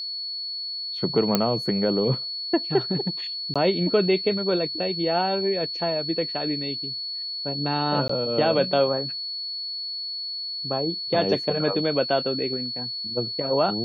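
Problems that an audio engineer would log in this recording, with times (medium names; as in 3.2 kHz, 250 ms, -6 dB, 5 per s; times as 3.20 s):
whine 4.4 kHz -29 dBFS
1.35 s: pop -5 dBFS
3.54–3.56 s: dropout 16 ms
8.08–8.09 s: dropout 14 ms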